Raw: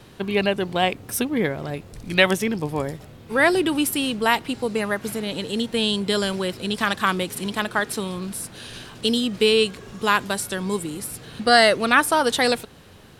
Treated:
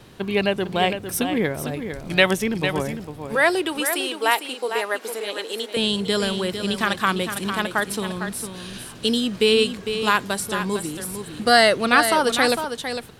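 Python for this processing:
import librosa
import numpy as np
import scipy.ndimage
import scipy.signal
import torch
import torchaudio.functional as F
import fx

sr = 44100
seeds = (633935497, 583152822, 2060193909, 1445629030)

y = fx.highpass(x, sr, hz=360.0, slope=24, at=(3.35, 5.77))
y = y + 10.0 ** (-8.5 / 20.0) * np.pad(y, (int(454 * sr / 1000.0), 0))[:len(y)]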